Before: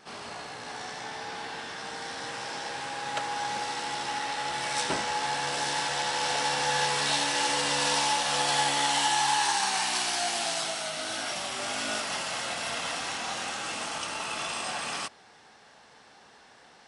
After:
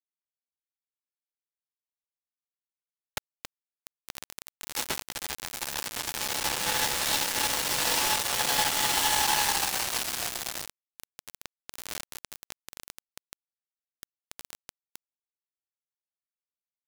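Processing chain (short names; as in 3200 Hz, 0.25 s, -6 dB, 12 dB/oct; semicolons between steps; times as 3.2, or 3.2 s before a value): low shelf 400 Hz -6.5 dB; bit-crush 4-bit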